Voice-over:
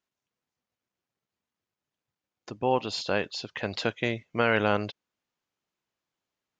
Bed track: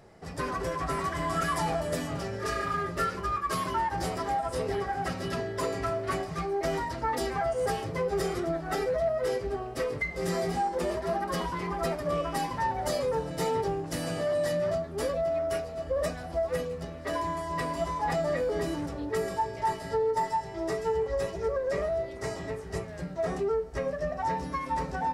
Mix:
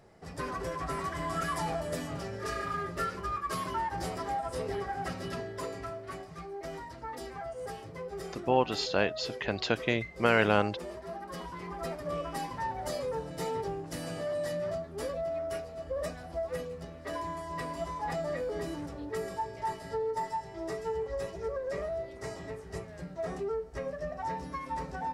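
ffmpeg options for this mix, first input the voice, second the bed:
ffmpeg -i stem1.wav -i stem2.wav -filter_complex "[0:a]adelay=5850,volume=-0.5dB[link_01];[1:a]volume=1.5dB,afade=type=out:start_time=5.17:duration=0.89:silence=0.446684,afade=type=in:start_time=11.23:duration=0.91:silence=0.530884[link_02];[link_01][link_02]amix=inputs=2:normalize=0" out.wav

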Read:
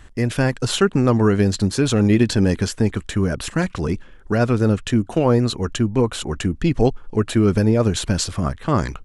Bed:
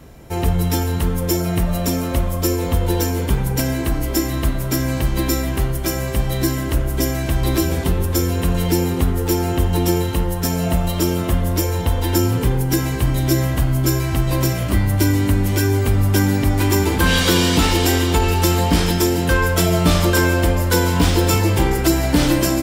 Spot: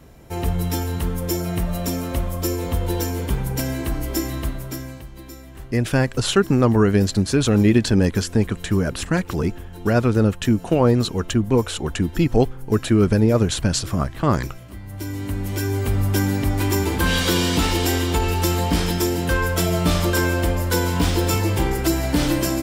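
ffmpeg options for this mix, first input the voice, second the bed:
ffmpeg -i stem1.wav -i stem2.wav -filter_complex "[0:a]adelay=5550,volume=0dB[link_01];[1:a]volume=11.5dB,afade=type=out:start_time=4.26:duration=0.8:silence=0.16788,afade=type=in:start_time=14.82:duration=1.15:silence=0.158489[link_02];[link_01][link_02]amix=inputs=2:normalize=0" out.wav

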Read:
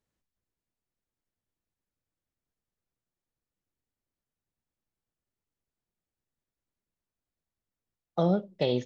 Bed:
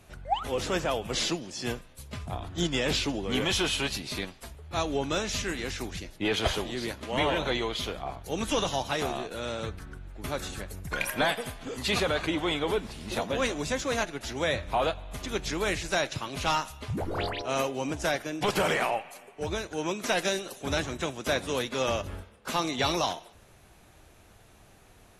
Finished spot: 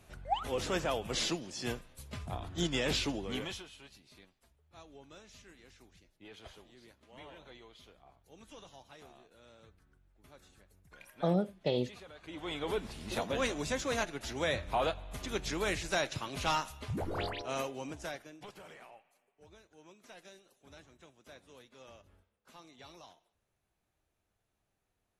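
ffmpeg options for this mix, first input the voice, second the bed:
ffmpeg -i stem1.wav -i stem2.wav -filter_complex "[0:a]adelay=3050,volume=-4.5dB[link_01];[1:a]volume=16dB,afade=type=out:start_time=3.1:duration=0.55:silence=0.0944061,afade=type=in:start_time=12.21:duration=0.66:silence=0.0944061,afade=type=out:start_time=17.08:duration=1.46:silence=0.0794328[link_02];[link_01][link_02]amix=inputs=2:normalize=0" out.wav

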